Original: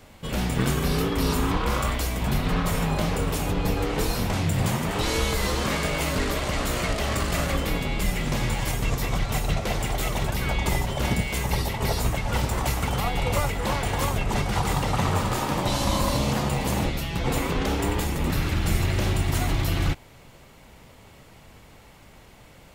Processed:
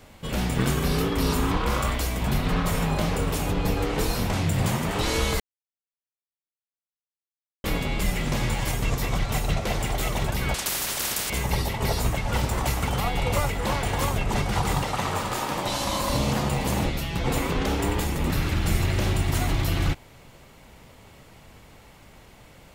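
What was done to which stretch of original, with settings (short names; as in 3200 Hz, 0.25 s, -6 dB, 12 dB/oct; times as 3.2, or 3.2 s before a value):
5.4–7.64 mute
10.54–11.3 spectral compressor 10:1
14.83–16.1 low shelf 270 Hz -9 dB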